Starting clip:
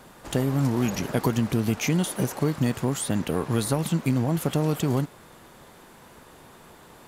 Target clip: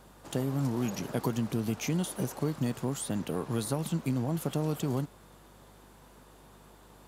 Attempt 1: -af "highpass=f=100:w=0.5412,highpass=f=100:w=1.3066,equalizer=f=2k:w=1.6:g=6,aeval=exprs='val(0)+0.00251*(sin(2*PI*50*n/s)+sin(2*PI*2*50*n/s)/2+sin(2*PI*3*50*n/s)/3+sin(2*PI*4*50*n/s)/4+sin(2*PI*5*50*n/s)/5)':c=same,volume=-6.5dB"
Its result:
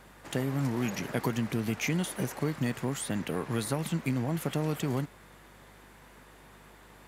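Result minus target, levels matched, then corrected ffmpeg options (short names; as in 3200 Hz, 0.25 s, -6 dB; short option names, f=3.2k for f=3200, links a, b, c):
2000 Hz band +7.0 dB
-af "highpass=f=100:w=0.5412,highpass=f=100:w=1.3066,equalizer=f=2k:w=1.6:g=-4,aeval=exprs='val(0)+0.00251*(sin(2*PI*50*n/s)+sin(2*PI*2*50*n/s)/2+sin(2*PI*3*50*n/s)/3+sin(2*PI*4*50*n/s)/4+sin(2*PI*5*50*n/s)/5)':c=same,volume=-6.5dB"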